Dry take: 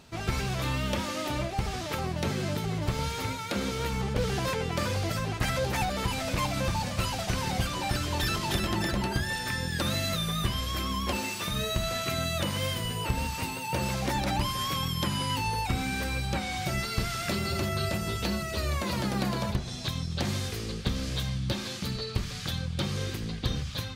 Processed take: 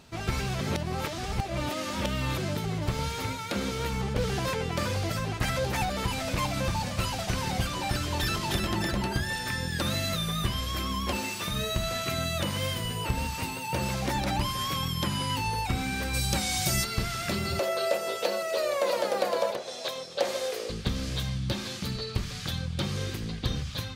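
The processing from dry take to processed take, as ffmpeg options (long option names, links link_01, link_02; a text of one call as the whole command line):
ffmpeg -i in.wav -filter_complex "[0:a]asplit=3[link_01][link_02][link_03];[link_01]afade=type=out:start_time=16.13:duration=0.02[link_04];[link_02]bass=frequency=250:gain=2,treble=frequency=4000:gain=14,afade=type=in:start_time=16.13:duration=0.02,afade=type=out:start_time=16.83:duration=0.02[link_05];[link_03]afade=type=in:start_time=16.83:duration=0.02[link_06];[link_04][link_05][link_06]amix=inputs=3:normalize=0,asettb=1/sr,asplit=3[link_07][link_08][link_09];[link_07]atrim=end=17.594[link_10];[link_08]atrim=start=17.59:end=20.7,asetpts=PTS-STARTPTS,afade=type=in:duration=0.004:curve=qsin,afade=type=out:start_time=3.106:duration=0.004:curve=qsin,highpass=frequency=530:width_type=q:width=5.6[link_11];[link_09]atrim=start=20.696[link_12];[link_10][link_11]acrossfade=duration=0.004:curve1=hsin:curve2=qsin[link_13];[link_13][link_12]acrossfade=duration=0.004:curve1=qsin:curve2=hsin,asplit=3[link_14][link_15][link_16];[link_14]atrim=end=0.612[link_17];[link_15]atrim=start=0.608:end=2.382,asetpts=PTS-STARTPTS,areverse[link_18];[link_16]atrim=start=2.378[link_19];[link_17][link_18]acrossfade=duration=0.004:curve1=hsin:curve2=hsin[link_20];[link_20][link_19]acrossfade=duration=0.004:curve1=hsin:curve2=hsin" out.wav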